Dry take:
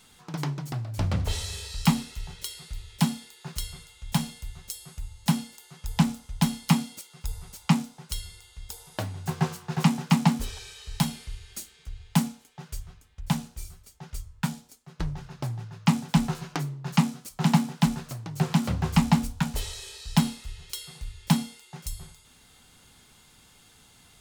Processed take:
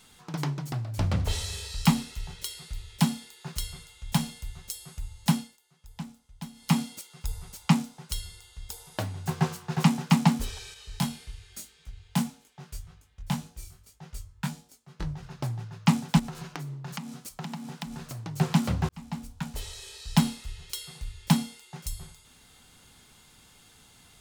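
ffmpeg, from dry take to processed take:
-filter_complex "[0:a]asettb=1/sr,asplit=3[s0][s1][s2];[s0]atrim=end=8.134[s3];[s1]atrim=start=8.13:end=8.66,asetpts=PTS-STARTPTS,afade=t=in:d=0.004:c=qsin,afade=t=out:st=0.526:d=0.004:c=qsin,bandreject=f=2300:w=8.1[s4];[s2]atrim=start=8.656[s5];[s3][s4]acrossfade=d=0.004:c1=hsin:c2=qsin[s6];[s6][s5]acrossfade=d=0.004:c1=qsin:c2=hsin,asettb=1/sr,asplit=3[s7][s8][s9];[s7]atrim=end=10.744[s10];[s8]atrim=start=10.74:end=15.23,asetpts=PTS-STARTPTS,afade=t=in:d=0.004:c=qsin,afade=t=out:st=4.486:d=0.004:c=qsin,flanger=delay=19:depth=2.8:speed=1.8[s11];[s9]atrim=start=15.226[s12];[s10][s11]acrossfade=d=0.004:c1=hsin:c2=qsin[s13];[s13][s12]acrossfade=d=0.004:c1=qsin:c2=hsin,asettb=1/sr,asplit=3[s14][s15][s16];[s14]atrim=end=16.194[s17];[s15]atrim=start=16.19:end=18.23,asetpts=PTS-STARTPTS,afade=t=in:d=0.004:c=qsin,afade=t=out:st=2.036:d=0.004:c=qsin,acompressor=threshold=0.0224:ratio=10:attack=3.2:release=140:knee=1:detection=peak[s18];[s16]atrim=start=18.226[s19];[s17][s18]acrossfade=d=0.004:c1=hsin:c2=qsin[s20];[s20][s19]acrossfade=d=0.004:c1=qsin:c2=hsin,asplit=4[s21][s22][s23][s24];[s21]atrim=end=5.58,asetpts=PTS-STARTPTS,afade=t=out:st=5.33:d=0.25:silence=0.149624[s25];[s22]atrim=start=5.58:end=6.54,asetpts=PTS-STARTPTS,volume=0.15[s26];[s23]atrim=start=6.54:end=18.89,asetpts=PTS-STARTPTS,afade=t=in:d=0.25:silence=0.149624,afade=t=out:st=12.346:d=0.004:c=hsin[s27];[s24]atrim=start=18.89,asetpts=PTS-STARTPTS,afade=t=in:d=1.31[s28];[s25][s26][s27][s28]concat=n=4:v=0:a=1"

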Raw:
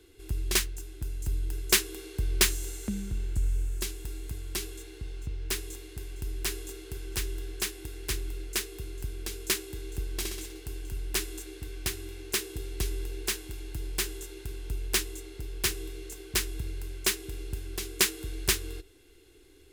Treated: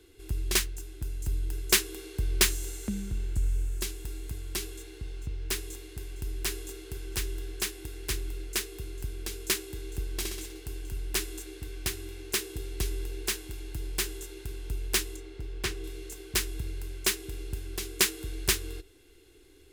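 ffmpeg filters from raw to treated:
-filter_complex "[0:a]asettb=1/sr,asplit=3[s0][s1][s2];[s0]atrim=end=15.164[s3];[s1]atrim=start=15.16:end=15.84,asetpts=PTS-STARTPTS,afade=t=in:d=0.004:c=qsin,afade=t=out:st=0.676:d=0.004:c=qsin,aemphasis=mode=reproduction:type=50kf[s4];[s2]atrim=start=15.836[s5];[s3][s4]acrossfade=d=0.004:c1=hsin:c2=qsin[s6];[s6][s5]acrossfade=d=0.004:c1=qsin:c2=hsin"

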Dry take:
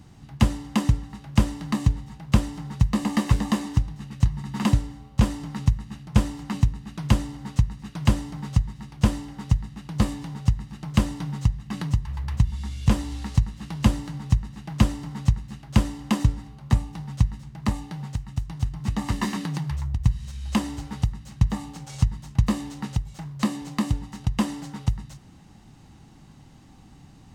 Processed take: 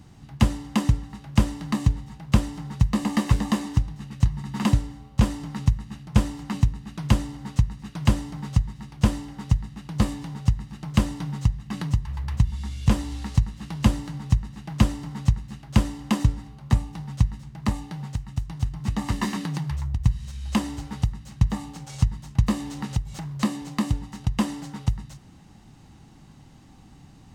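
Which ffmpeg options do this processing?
-filter_complex "[0:a]asettb=1/sr,asplit=3[s0][s1][s2];[s0]atrim=end=22.484[s3];[s1]atrim=start=22.48:end=23.44,asetpts=PTS-STARTPTS,afade=t=in:d=0.004:c=qsin,afade=t=out:st=0.956:d=0.004:c=qsin,acompressor=mode=upward:threshold=0.0398:ratio=2.5:attack=3.2:release=140:knee=2.83:detection=peak[s4];[s2]atrim=start=23.436[s5];[s3][s4]acrossfade=d=0.004:c1=hsin:c2=qsin[s6];[s6][s5]acrossfade=d=0.004:c1=qsin:c2=hsin"

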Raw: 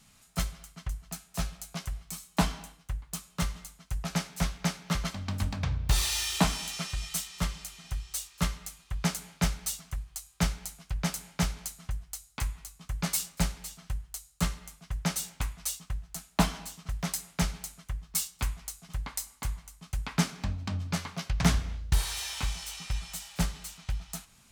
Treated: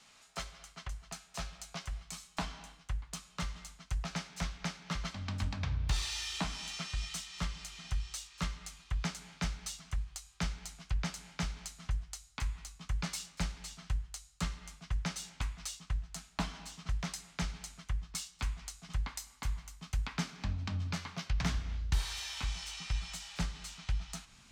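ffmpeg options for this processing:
-filter_complex "[0:a]asettb=1/sr,asplit=3[s0][s1][s2];[s0]atrim=end=19.074[s3];[s1]atrim=start=19.07:end=22.44,asetpts=PTS-STARTPTS,afade=t=in:d=0.004:c=qsin,afade=t=out:st=3.366:d=0.004:c=qsin,equalizer=f=14000:w=2.7:g=11[s4];[s2]atrim=start=22.436[s5];[s3][s4]acrossfade=d=0.004:c1=hsin:c2=qsin[s6];[s6][s5]acrossfade=d=0.004:c1=qsin:c2=hsin,acrossover=split=320 7400:gain=0.141 1 0.112[s7][s8][s9];[s7][s8][s9]amix=inputs=3:normalize=0,acompressor=threshold=0.00501:ratio=2,asubboost=boost=7:cutoff=180,volume=1.41"

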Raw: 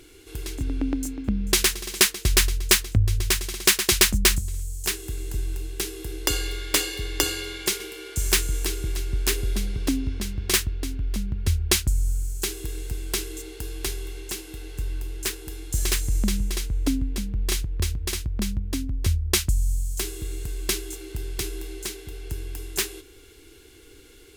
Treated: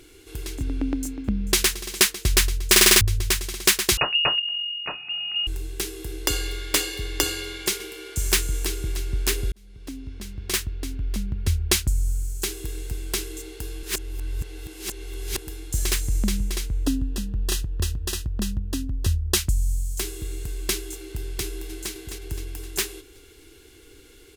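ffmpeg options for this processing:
-filter_complex "[0:a]asettb=1/sr,asplit=3[s0][s1][s2];[s0]atrim=end=3.974[s3];[s1]atrim=start=3.97:end=5.47,asetpts=PTS-STARTPTS,afade=t=in:d=0.004:c=qsin,afade=t=out:st=1.496:d=0.004:c=qsin,lowpass=f=2500:t=q:w=0.5098,lowpass=f=2500:t=q:w=0.6013,lowpass=f=2500:t=q:w=0.9,lowpass=f=2500:t=q:w=2.563,afreqshift=-2900[s4];[s2]atrim=start=5.466[s5];[s3][s4]acrossfade=d=0.004:c1=hsin:c2=qsin[s6];[s6][s5]acrossfade=d=0.004:c1=qsin:c2=hsin,asettb=1/sr,asplit=3[s7][s8][s9];[s7]atrim=end=16.854[s10];[s8]atrim=start=16.85:end=19.37,asetpts=PTS-STARTPTS,afade=t=in:d=0.004:c=qsin,afade=t=out:st=2.516:d=0.004:c=qsin,asuperstop=centerf=2200:order=20:qfactor=5.1[s11];[s9]atrim=start=19.366[s12];[s10][s11]acrossfade=d=0.004:c1=hsin:c2=qsin[s13];[s13][s12]acrossfade=d=0.004:c1=qsin:c2=hsin,asplit=2[s14][s15];[s15]afade=t=in:st=21.43:d=0.01,afade=t=out:st=21.92:d=0.01,aecho=0:1:260|520|780|1040|1300|1560|1820:0.473151|0.260233|0.143128|0.0787205|0.0432963|0.023813|0.0130971[s16];[s14][s16]amix=inputs=2:normalize=0,asplit=10[s17][s18][s19][s20][s21][s22][s23][s24][s25][s26];[s17]atrim=end=2.762[s27];[s18]atrim=start=2.708:end=2.762[s28];[s19]atrim=start=2.708:end=2.762[s29];[s20]atrim=start=2.708:end=2.762[s30];[s21]atrim=start=2.708:end=2.762[s31];[s22]atrim=start=2.708:end=2.762[s32];[s23]atrim=start=3.008:end=9.52,asetpts=PTS-STARTPTS,afade=t=out:st=6.508:d=0.004:c=hsin[s33];[s24]atrim=start=9.52:end=13.832,asetpts=PTS-STARTPTS,afade=t=in:d=1.59[s34];[s25]atrim=start=13.828:end=15.382,asetpts=PTS-STARTPTS,areverse[s35];[s26]atrim=start=15.378[s36];[s27][s28]acrossfade=d=0.004:c1=hsin:c2=hsin[s37];[s37][s29]acrossfade=d=0.004:c1=hsin:c2=hsin[s38];[s38][s30]acrossfade=d=0.004:c1=hsin:c2=hsin[s39];[s39][s31]acrossfade=d=0.004:c1=hsin:c2=hsin[s40];[s40][s32]acrossfade=d=0.004:c1=hsin:c2=hsin[s41];[s33][s34]concat=n=2:v=0:a=1[s42];[s41][s42]acrossfade=d=0.004:c1=hsin:c2=hsin[s43];[s43][s35]acrossfade=d=0.004:c1=hsin:c2=hsin[s44];[s44][s36]acrossfade=d=0.004:c1=hsin:c2=hsin"

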